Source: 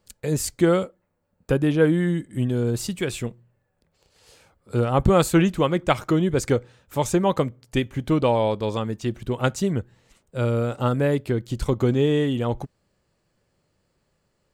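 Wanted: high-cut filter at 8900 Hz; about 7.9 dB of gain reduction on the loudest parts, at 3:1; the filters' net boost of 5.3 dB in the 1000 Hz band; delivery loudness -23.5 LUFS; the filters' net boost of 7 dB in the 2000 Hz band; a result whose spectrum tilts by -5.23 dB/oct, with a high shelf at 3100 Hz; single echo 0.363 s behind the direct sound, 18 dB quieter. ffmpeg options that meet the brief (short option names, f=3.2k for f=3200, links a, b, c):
-af "lowpass=8.9k,equalizer=f=1k:t=o:g=4.5,equalizer=f=2k:t=o:g=5.5,highshelf=f=3.1k:g=6,acompressor=threshold=-21dB:ratio=3,aecho=1:1:363:0.126,volume=2.5dB"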